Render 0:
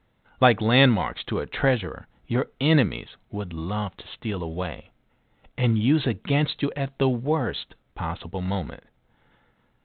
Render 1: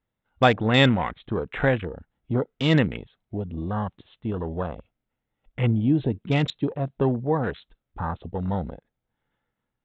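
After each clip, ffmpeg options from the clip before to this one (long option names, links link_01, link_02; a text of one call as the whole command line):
ffmpeg -i in.wav -af "afwtdn=0.0251" out.wav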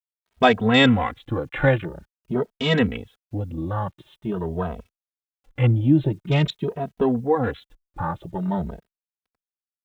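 ffmpeg -i in.wav -filter_complex "[0:a]acrusher=bits=10:mix=0:aa=0.000001,asplit=2[link_01][link_02];[link_02]adelay=2.8,afreqshift=0.47[link_03];[link_01][link_03]amix=inputs=2:normalize=1,volume=5dB" out.wav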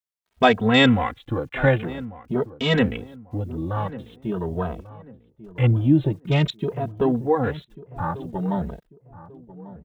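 ffmpeg -i in.wav -filter_complex "[0:a]asplit=2[link_01][link_02];[link_02]adelay=1143,lowpass=frequency=1000:poles=1,volume=-16dB,asplit=2[link_03][link_04];[link_04]adelay=1143,lowpass=frequency=1000:poles=1,volume=0.35,asplit=2[link_05][link_06];[link_06]adelay=1143,lowpass=frequency=1000:poles=1,volume=0.35[link_07];[link_01][link_03][link_05][link_07]amix=inputs=4:normalize=0" out.wav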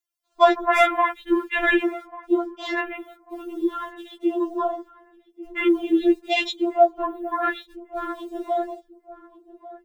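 ffmpeg -i in.wav -filter_complex "[0:a]acrossover=split=3300[link_01][link_02];[link_02]aeval=exprs='clip(val(0),-1,0.075)':channel_layout=same[link_03];[link_01][link_03]amix=inputs=2:normalize=0,afftfilt=real='re*4*eq(mod(b,16),0)':imag='im*4*eq(mod(b,16),0)':win_size=2048:overlap=0.75,volume=7.5dB" out.wav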